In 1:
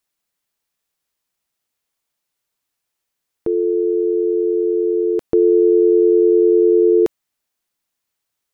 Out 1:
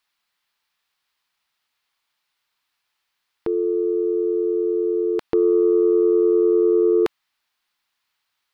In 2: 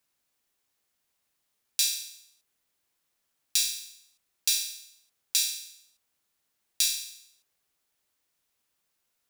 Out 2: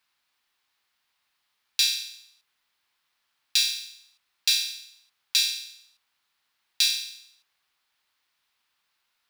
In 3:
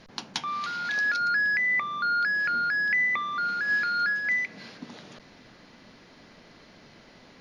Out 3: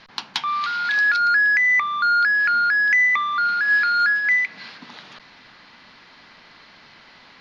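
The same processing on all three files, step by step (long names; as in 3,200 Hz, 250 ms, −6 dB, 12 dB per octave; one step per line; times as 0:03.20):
flat-topped bell 2,000 Hz +11.5 dB 2.9 octaves
soft clipping −3 dBFS
level −3.5 dB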